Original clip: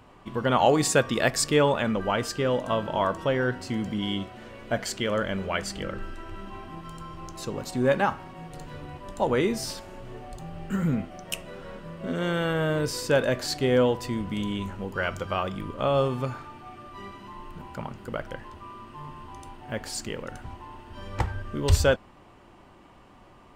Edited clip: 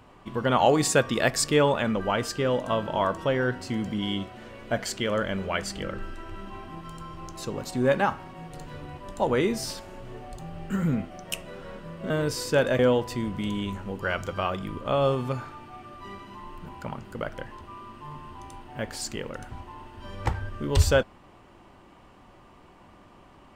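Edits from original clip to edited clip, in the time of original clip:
12.10–12.67 s: delete
13.36–13.72 s: delete

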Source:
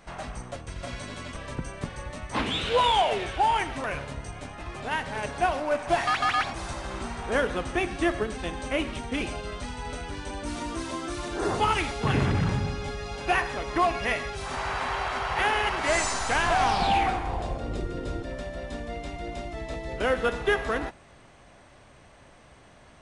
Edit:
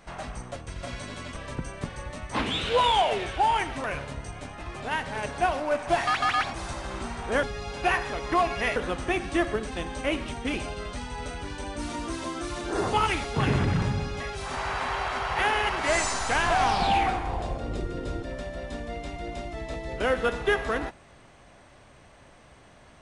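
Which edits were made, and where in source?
12.87–14.20 s: move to 7.43 s

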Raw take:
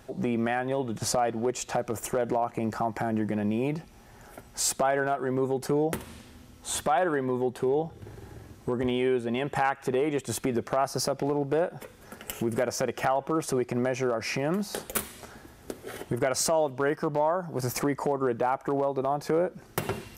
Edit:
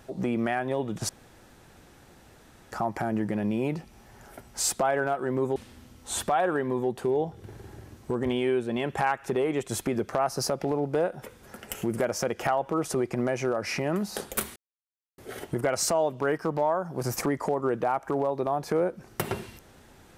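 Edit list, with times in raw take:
1.09–2.72 s: room tone
5.56–6.14 s: delete
15.14–15.76 s: mute

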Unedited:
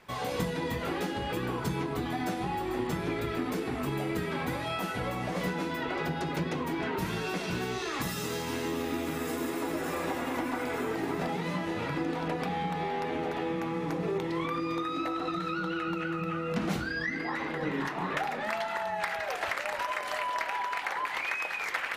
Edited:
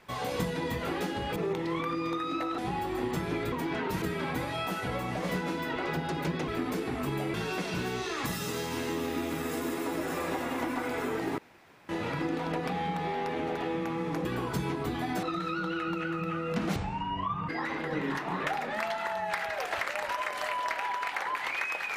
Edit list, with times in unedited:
1.36–2.34 s: swap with 14.01–15.23 s
3.28–4.14 s: swap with 6.60–7.10 s
11.14–11.65 s: room tone
16.76–17.19 s: speed 59%

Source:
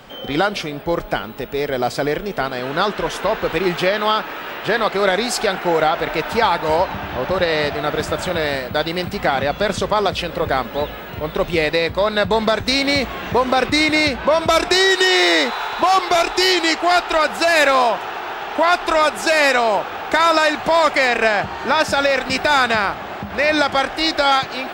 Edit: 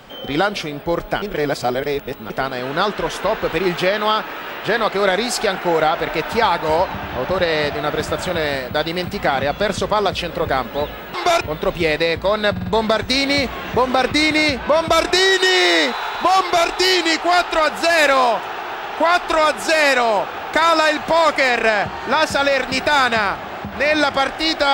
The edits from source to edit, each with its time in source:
1.22–2.30 s: reverse
12.24 s: stutter 0.05 s, 4 plays
15.99–16.26 s: copy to 11.14 s

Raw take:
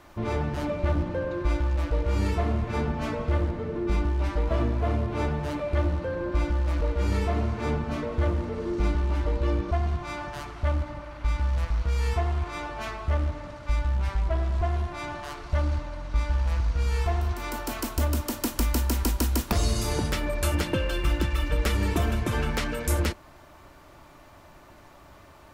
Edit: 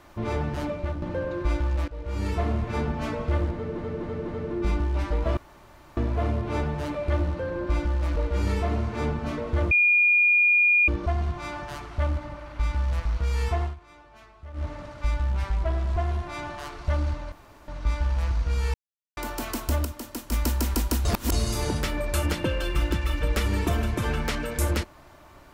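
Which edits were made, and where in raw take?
0.62–1.02 s: fade out, to -9.5 dB
1.88–2.41 s: fade in, from -17 dB
3.53–3.78 s: loop, 4 plays
4.62 s: insert room tone 0.60 s
8.36–9.53 s: bleep 2.43 kHz -16 dBFS
12.28–13.31 s: dip -17 dB, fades 0.13 s
15.97 s: insert room tone 0.36 s
17.03–17.46 s: mute
18.14–18.61 s: gain -7 dB
19.34–19.61 s: reverse

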